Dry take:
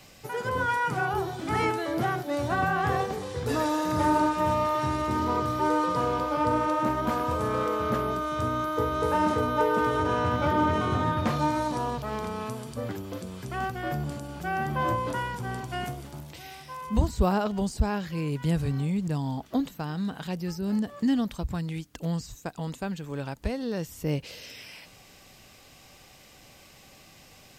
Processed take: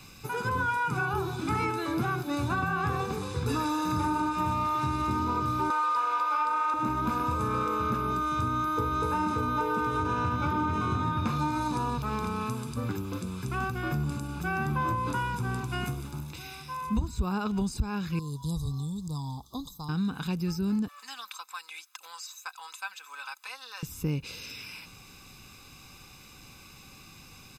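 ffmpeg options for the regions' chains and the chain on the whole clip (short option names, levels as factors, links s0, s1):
-filter_complex "[0:a]asettb=1/sr,asplit=3[s0][s1][s2];[s0]atrim=end=5.704[s3];[s1]atrim=start=5.7:end=6.74,asetpts=PTS-STARTPTS,afade=t=in:d=0.004:c=qsin,afade=t=out:st=1.036:d=0.004:c=qsin,highpass=780,equalizer=f=1300:w=0.39:g=7[s4];[s2]atrim=start=6.736[s5];[s3][s4]acrossfade=d=0.004:c1=hsin:c2=qsin[s6];[s6][s5]acrossfade=d=0.004:c1=qsin:c2=hsin,asettb=1/sr,asplit=3[s7][s8][s9];[s7]atrim=end=18.194[s10];[s8]atrim=start=18.19:end=19.89,asetpts=PTS-STARTPTS,afade=t=in:d=0.004:c=qsin,afade=t=out:st=1.696:d=0.004:c=qsin,asuperstop=centerf=2000:order=12:qfactor=0.87,equalizer=f=280:t=o:w=2.4:g=-14[s11];[s9]atrim=start=19.886[s12];[s10][s11]acrossfade=d=0.004:c1=hsin:c2=qsin[s13];[s13][s12]acrossfade=d=0.004:c1=qsin:c2=hsin,asettb=1/sr,asplit=3[s14][s15][s16];[s14]atrim=end=20.884[s17];[s15]atrim=start=20.88:end=23.83,asetpts=PTS-STARTPTS,afade=t=in:d=0.004:c=qsin,afade=t=out:st=2.946:d=0.004:c=qsin,highpass=f=930:w=0.5412,highpass=f=930:w=1.3066,aecho=1:1:3.9:0.56,atrim=end_sample=130095[s18];[s16]atrim=start=23.826[s19];[s17][s18]acrossfade=d=0.004:c1=hsin:c2=qsin[s20];[s20][s19]acrossfade=d=0.004:c1=qsin:c2=hsin,aecho=1:1:0.8:0.71,acompressor=threshold=0.0562:ratio=6"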